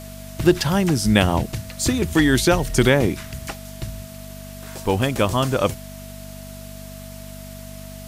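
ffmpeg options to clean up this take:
-af "bandreject=f=49:t=h:w=4,bandreject=f=98:t=h:w=4,bandreject=f=147:t=h:w=4,bandreject=f=196:t=h:w=4,bandreject=f=245:t=h:w=4,bandreject=f=650:w=30,afftdn=nr=29:nf=-37"

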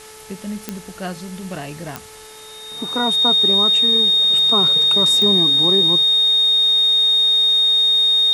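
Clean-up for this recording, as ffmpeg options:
-af "adeclick=t=4,bandreject=f=434.5:t=h:w=4,bandreject=f=869:t=h:w=4,bandreject=f=1.3035k:t=h:w=4,bandreject=f=1.738k:t=h:w=4,bandreject=f=2.1725k:t=h:w=4,bandreject=f=3.7k:w=30,afwtdn=0.01"

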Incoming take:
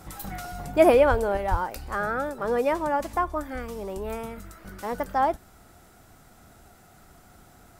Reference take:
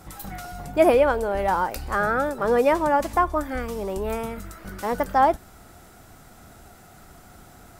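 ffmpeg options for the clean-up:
-filter_complex "[0:a]asplit=3[a][b][c];[a]afade=t=out:st=1.1:d=0.02[d];[b]highpass=f=140:w=0.5412,highpass=f=140:w=1.3066,afade=t=in:st=1.1:d=0.02,afade=t=out:st=1.22:d=0.02[e];[c]afade=t=in:st=1.22:d=0.02[f];[d][e][f]amix=inputs=3:normalize=0,asplit=3[g][h][i];[g]afade=t=out:st=1.5:d=0.02[j];[h]highpass=f=140:w=0.5412,highpass=f=140:w=1.3066,afade=t=in:st=1.5:d=0.02,afade=t=out:st=1.62:d=0.02[k];[i]afade=t=in:st=1.62:d=0.02[l];[j][k][l]amix=inputs=3:normalize=0,asetnsamples=n=441:p=0,asendcmd='1.37 volume volume 5dB',volume=0dB"

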